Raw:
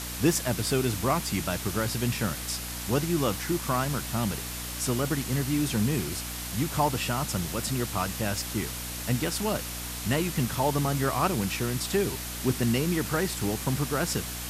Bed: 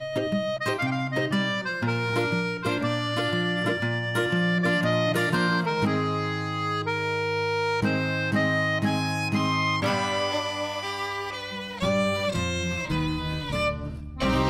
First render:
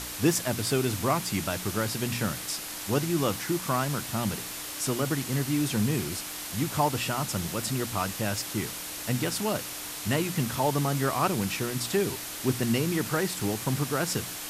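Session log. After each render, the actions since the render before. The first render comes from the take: de-hum 60 Hz, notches 4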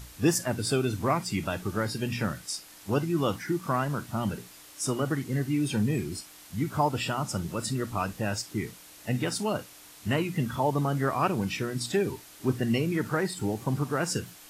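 noise print and reduce 13 dB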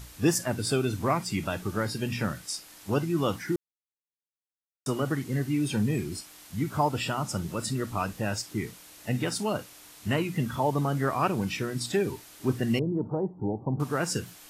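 3.56–4.86 s: mute; 12.79–13.80 s: elliptic low-pass 900 Hz, stop band 70 dB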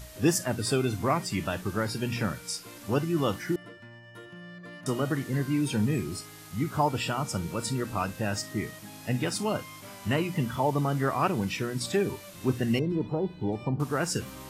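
add bed -21.5 dB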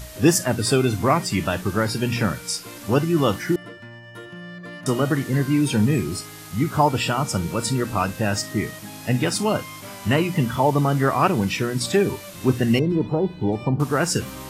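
trim +7.5 dB

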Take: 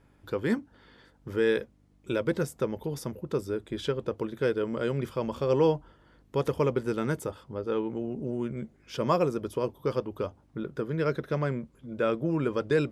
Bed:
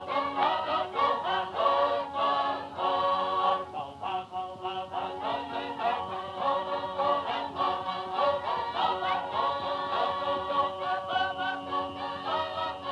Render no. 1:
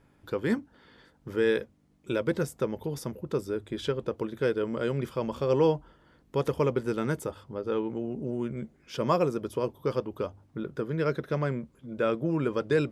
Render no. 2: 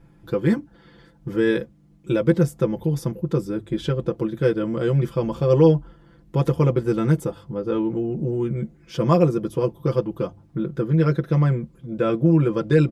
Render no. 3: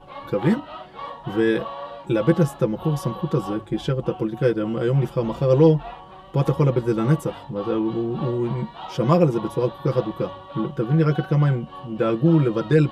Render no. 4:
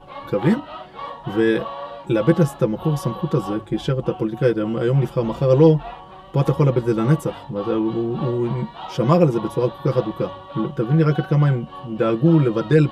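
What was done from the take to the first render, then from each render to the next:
de-hum 50 Hz, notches 2
bass shelf 310 Hz +11.5 dB; comb 5.9 ms, depth 86%
add bed -8.5 dB
trim +2 dB; peak limiter -3 dBFS, peak gain reduction 0.5 dB

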